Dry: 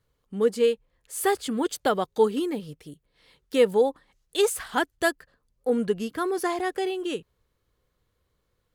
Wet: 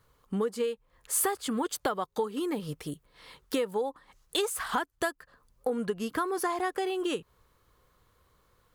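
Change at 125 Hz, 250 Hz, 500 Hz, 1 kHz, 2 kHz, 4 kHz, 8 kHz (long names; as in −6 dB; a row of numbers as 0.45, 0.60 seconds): −1.0, −4.5, −8.0, −3.0, −5.0, −3.0, +1.0 decibels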